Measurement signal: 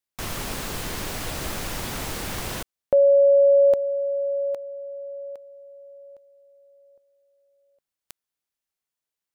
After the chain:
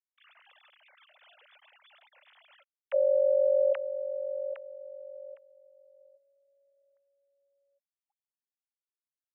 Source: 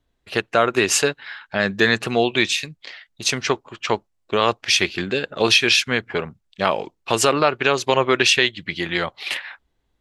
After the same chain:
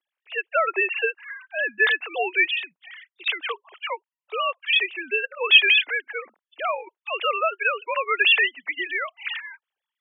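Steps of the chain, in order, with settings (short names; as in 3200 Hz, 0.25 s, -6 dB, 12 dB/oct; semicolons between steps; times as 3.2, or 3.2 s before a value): sine-wave speech; HPF 280 Hz 24 dB/oct; tilt +4.5 dB/oct; gain -5.5 dB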